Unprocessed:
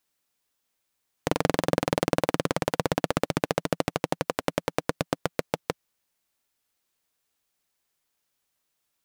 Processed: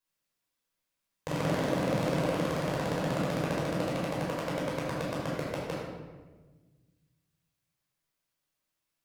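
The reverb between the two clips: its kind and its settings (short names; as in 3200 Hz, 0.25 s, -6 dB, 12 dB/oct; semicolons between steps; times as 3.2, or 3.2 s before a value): shoebox room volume 1000 m³, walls mixed, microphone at 5.3 m; gain -14.5 dB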